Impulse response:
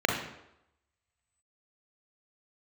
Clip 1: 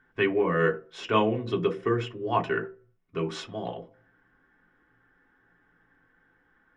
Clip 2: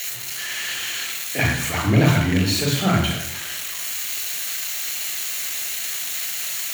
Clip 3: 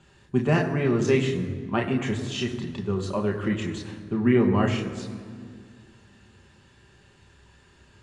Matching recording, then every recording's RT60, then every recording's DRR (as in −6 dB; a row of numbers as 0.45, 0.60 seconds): 2; 0.50, 0.85, 2.1 seconds; 0.5, 0.0, 1.0 decibels